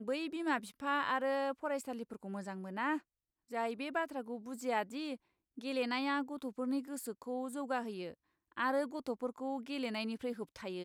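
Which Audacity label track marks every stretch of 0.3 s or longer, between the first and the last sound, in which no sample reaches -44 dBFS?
2.980000	3.510000	silence
5.150000	5.580000	silence
8.120000	8.570000	silence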